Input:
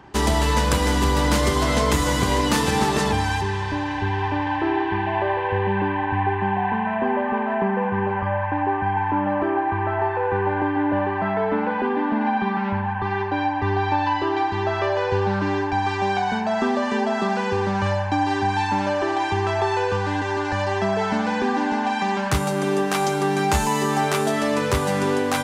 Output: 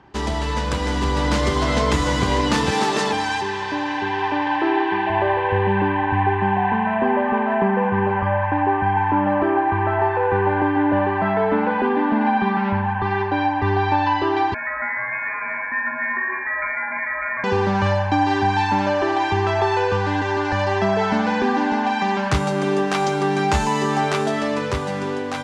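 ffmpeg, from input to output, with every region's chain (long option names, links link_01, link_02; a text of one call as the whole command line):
ffmpeg -i in.wav -filter_complex "[0:a]asettb=1/sr,asplit=3[link_01][link_02][link_03];[link_01]atrim=end=2.714[link_04];[link_02]atrim=start=2.71:end=5.1,asetpts=PTS-STARTPTS,afade=type=in:duration=0.004:curve=qsin,afade=type=out:start_time=2.386:duration=0.004:curve=qsin,highpass=240,highshelf=frequency=4700:gain=5[link_05];[link_03]atrim=start=5.096[link_06];[link_04][link_05]acrossfade=duration=0.004:curve1=hsin:curve2=qsin[link_07];[link_07][link_06]acrossfade=duration=0.004:curve1=qsin:curve2=hsin,asettb=1/sr,asplit=3[link_08][link_09][link_10];[link_08]atrim=end=14.544[link_11];[link_09]atrim=start=14.54:end=17.44,asetpts=PTS-STARTPTS,afade=type=in:duration=0.004:curve=qsin,afade=type=out:start_time=2.896:duration=0.004:curve=qsin,highpass=frequency=1100:poles=1,lowpass=frequency=2200:width_type=q:width=0.5098,lowpass=frequency=2200:width_type=q:width=0.6013,lowpass=frequency=2200:width_type=q:width=0.9,lowpass=frequency=2200:width_type=q:width=2.563,afreqshift=-2600[link_12];[link_10]atrim=start=17.436[link_13];[link_11][link_12]acrossfade=duration=0.004:curve1=hsin:curve2=qsin[link_14];[link_14][link_13]acrossfade=duration=0.004:curve1=qsin:curve2=hsin,lowpass=6000,dynaudnorm=framelen=100:gausssize=21:maxgain=8dB,volume=-4dB" out.wav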